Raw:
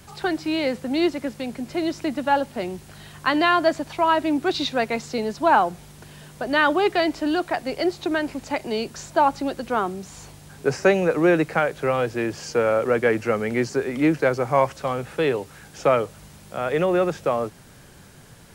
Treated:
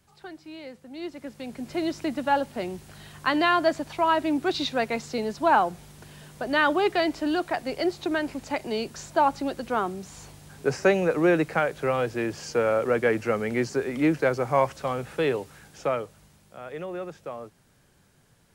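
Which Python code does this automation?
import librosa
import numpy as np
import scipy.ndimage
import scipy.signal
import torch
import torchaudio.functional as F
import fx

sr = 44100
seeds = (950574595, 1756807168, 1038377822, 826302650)

y = fx.gain(x, sr, db=fx.line((0.92, -17.5), (1.19, -11.0), (1.71, -3.0), (15.36, -3.0), (16.6, -14.0)))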